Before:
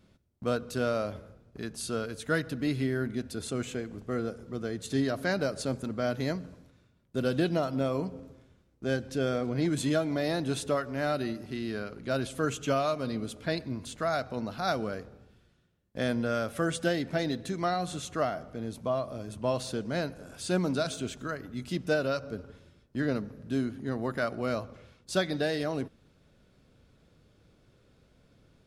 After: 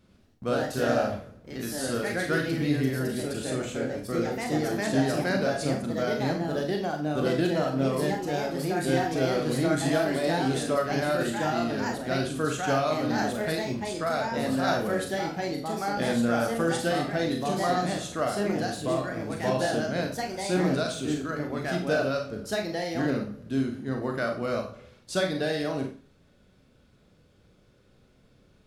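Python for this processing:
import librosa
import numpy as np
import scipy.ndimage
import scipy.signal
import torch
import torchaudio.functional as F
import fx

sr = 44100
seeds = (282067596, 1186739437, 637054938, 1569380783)

y = fx.rev_schroeder(x, sr, rt60_s=0.36, comb_ms=30, drr_db=2.5)
y = fx.echo_pitch(y, sr, ms=106, semitones=2, count=2, db_per_echo=-3.0)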